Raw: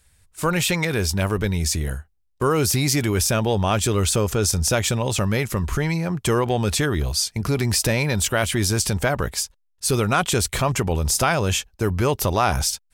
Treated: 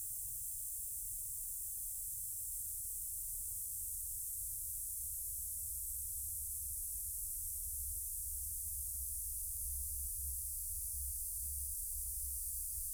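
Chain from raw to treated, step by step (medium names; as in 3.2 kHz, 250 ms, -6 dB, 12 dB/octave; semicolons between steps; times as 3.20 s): backward echo that repeats 644 ms, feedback 66%, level -4.5 dB; high-pass 51 Hz 12 dB/octave; de-esser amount 50%; inverse Chebyshev band-stop 180–2200 Hz, stop band 80 dB; Paulstretch 20×, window 1.00 s, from 6.50 s; on a send: reverberation, pre-delay 58 ms, DRR 8.5 dB; on the sum: trim +1.5 dB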